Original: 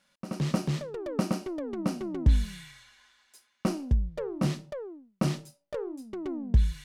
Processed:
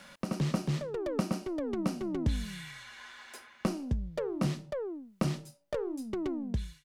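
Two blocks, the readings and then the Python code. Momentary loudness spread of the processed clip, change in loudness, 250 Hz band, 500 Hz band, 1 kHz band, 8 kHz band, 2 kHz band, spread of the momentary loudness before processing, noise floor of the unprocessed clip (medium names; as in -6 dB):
12 LU, -3.5 dB, -1.5 dB, 0.0 dB, -1.5 dB, -2.0 dB, 0.0 dB, 13 LU, -73 dBFS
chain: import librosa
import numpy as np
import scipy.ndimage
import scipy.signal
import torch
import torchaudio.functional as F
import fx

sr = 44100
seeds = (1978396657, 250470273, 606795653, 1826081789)

y = fx.fade_out_tail(x, sr, length_s=0.59)
y = fx.band_squash(y, sr, depth_pct=70)
y = y * librosa.db_to_amplitude(-1.5)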